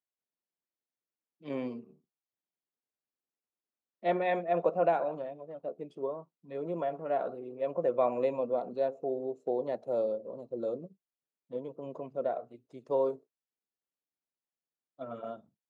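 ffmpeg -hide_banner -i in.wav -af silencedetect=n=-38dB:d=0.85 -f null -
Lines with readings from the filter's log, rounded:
silence_start: 0.00
silence_end: 1.46 | silence_duration: 1.46
silence_start: 1.79
silence_end: 4.04 | silence_duration: 2.25
silence_start: 13.14
silence_end: 15.01 | silence_duration: 1.87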